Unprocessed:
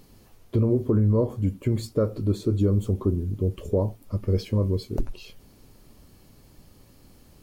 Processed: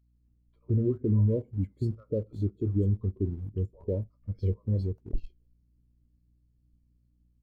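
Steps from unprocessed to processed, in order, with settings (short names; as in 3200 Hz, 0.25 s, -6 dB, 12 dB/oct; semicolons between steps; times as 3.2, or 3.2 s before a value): bands offset in time highs, lows 0.15 s, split 810 Hz; in parallel at -5 dB: sample gate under -27 dBFS; on the sum: hum 60 Hz, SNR 23 dB; spectral expander 1.5:1; gain -7 dB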